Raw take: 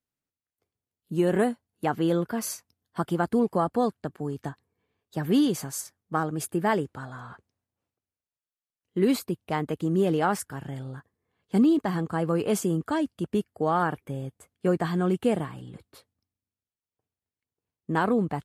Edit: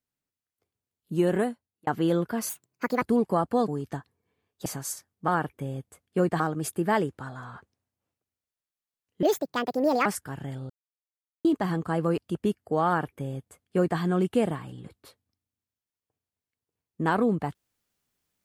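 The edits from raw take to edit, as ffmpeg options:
-filter_complex "[0:a]asplit=13[s0][s1][s2][s3][s4][s5][s6][s7][s8][s9][s10][s11][s12];[s0]atrim=end=1.87,asetpts=PTS-STARTPTS,afade=t=out:st=1.25:d=0.62[s13];[s1]atrim=start=1.87:end=2.494,asetpts=PTS-STARTPTS,afade=t=in:d=0.004:c=hsin[s14];[s2]atrim=start=2.49:end=3.25,asetpts=PTS-STARTPTS,asetrate=63504,aresample=44100[s15];[s3]atrim=start=3.246:end=3.912[s16];[s4]atrim=start=4.198:end=5.182[s17];[s5]atrim=start=5.538:end=6.162[s18];[s6]atrim=start=13.758:end=14.882[s19];[s7]atrim=start=6.158:end=8.994[s20];[s8]atrim=start=8.99:end=10.3,asetpts=PTS-STARTPTS,asetrate=69678,aresample=44100[s21];[s9]atrim=start=10.296:end=10.94,asetpts=PTS-STARTPTS,afade=t=out:st=0.64:d=0.004:c=hsin[s22];[s10]atrim=start=10.94:end=11.69,asetpts=PTS-STARTPTS,volume=0[s23];[s11]atrim=start=11.69:end=12.422,asetpts=PTS-STARTPTS,afade=t=in:d=0.004:c=hsin[s24];[s12]atrim=start=13.068[s25];[s13][s14]concat=n=2:v=0:a=1[s26];[s26][s15]acrossfade=d=0.004:c1=hsin:c2=hsin[s27];[s27][s16]acrossfade=d=0.004:c1=hsin:c2=hsin[s28];[s28][s17]acrossfade=d=0.004:c1=hsin:c2=hsin[s29];[s29][s18]acrossfade=d=0.004:c1=hsin:c2=hsin[s30];[s30][s19]acrossfade=d=0.004:c1=hsin:c2=hsin[s31];[s31][s20]acrossfade=d=0.004:c1=hsin:c2=hsin[s32];[s32][s21]acrossfade=d=0.004:c1=hsin:c2=hsin[s33];[s22][s23][s24]concat=n=3:v=0:a=1[s34];[s33][s34]acrossfade=d=0.004:c1=hsin:c2=hsin[s35];[s35][s25]acrossfade=d=0.004:c1=hsin:c2=hsin"

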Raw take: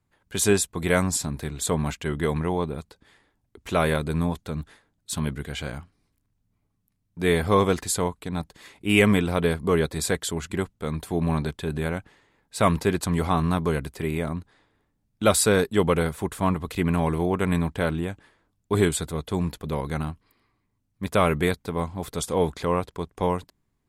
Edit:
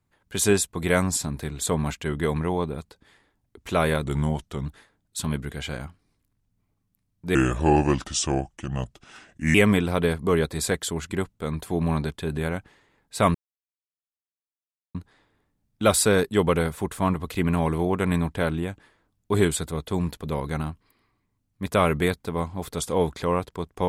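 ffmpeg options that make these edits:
-filter_complex "[0:a]asplit=7[s0][s1][s2][s3][s4][s5][s6];[s0]atrim=end=4.044[s7];[s1]atrim=start=4.04:end=4.59,asetpts=PTS-STARTPTS,asetrate=39249,aresample=44100[s8];[s2]atrim=start=4.586:end=7.284[s9];[s3]atrim=start=7.28:end=8.95,asetpts=PTS-STARTPTS,asetrate=33516,aresample=44100[s10];[s4]atrim=start=8.946:end=12.75,asetpts=PTS-STARTPTS,afade=t=out:st=3.8:d=0.004:c=hsin[s11];[s5]atrim=start=12.75:end=14.35,asetpts=PTS-STARTPTS,volume=0[s12];[s6]atrim=start=14.35,asetpts=PTS-STARTPTS,afade=t=in:d=0.004:c=hsin[s13];[s7][s8]acrossfade=d=0.004:c1=hsin:c2=hsin[s14];[s14][s9]acrossfade=d=0.004:c1=hsin:c2=hsin[s15];[s15][s10]acrossfade=d=0.004:c1=hsin:c2=hsin[s16];[s11][s12][s13]concat=n=3:v=0:a=1[s17];[s16][s17]acrossfade=d=0.004:c1=hsin:c2=hsin"

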